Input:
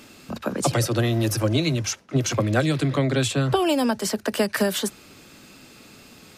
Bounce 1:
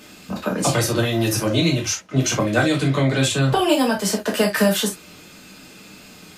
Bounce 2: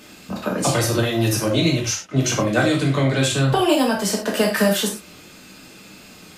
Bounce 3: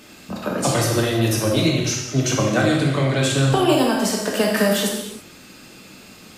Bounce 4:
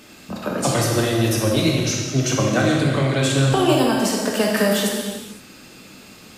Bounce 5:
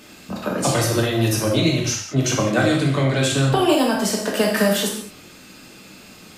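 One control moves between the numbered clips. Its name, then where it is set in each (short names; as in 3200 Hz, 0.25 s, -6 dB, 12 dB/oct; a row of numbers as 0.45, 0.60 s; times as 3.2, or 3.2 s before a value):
non-linear reverb, gate: 90, 140, 360, 540, 240 ms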